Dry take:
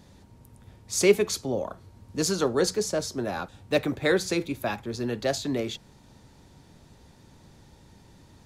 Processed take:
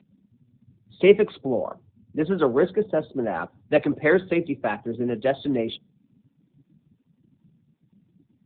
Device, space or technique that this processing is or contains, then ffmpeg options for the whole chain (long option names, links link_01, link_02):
mobile call with aggressive noise cancelling: -af "highpass=150,afftdn=noise_reduction=27:noise_floor=-43,volume=5dB" -ar 8000 -c:a libopencore_amrnb -b:a 7950